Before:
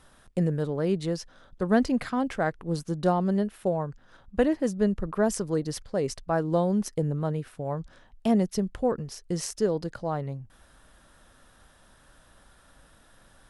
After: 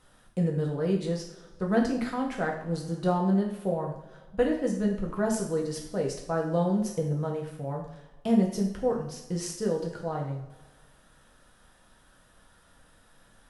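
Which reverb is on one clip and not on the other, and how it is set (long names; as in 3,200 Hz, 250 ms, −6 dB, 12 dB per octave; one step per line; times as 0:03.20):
coupled-rooms reverb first 0.56 s, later 1.8 s, from −17 dB, DRR −1 dB
level −5.5 dB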